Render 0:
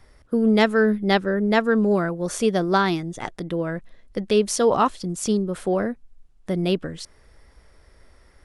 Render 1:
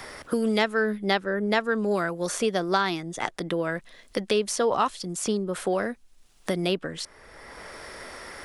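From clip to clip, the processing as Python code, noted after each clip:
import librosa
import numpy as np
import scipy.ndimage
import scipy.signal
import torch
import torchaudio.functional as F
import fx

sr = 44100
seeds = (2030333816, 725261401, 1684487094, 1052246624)

y = fx.low_shelf(x, sr, hz=390.0, db=-10.5)
y = fx.band_squash(y, sr, depth_pct=70)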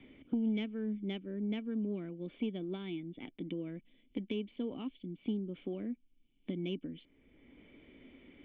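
y = fx.formant_cascade(x, sr, vowel='i')
y = 10.0 ** (-22.0 / 20.0) * np.tanh(y / 10.0 ** (-22.0 / 20.0))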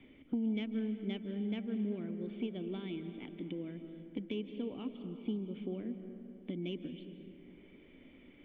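y = fx.rev_freeverb(x, sr, rt60_s=3.2, hf_ratio=0.45, predelay_ms=115, drr_db=8.0)
y = y * 10.0 ** (-1.5 / 20.0)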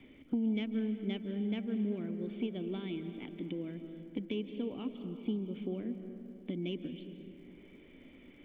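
y = fx.dmg_crackle(x, sr, seeds[0], per_s=130.0, level_db=-68.0)
y = y * 10.0 ** (2.0 / 20.0)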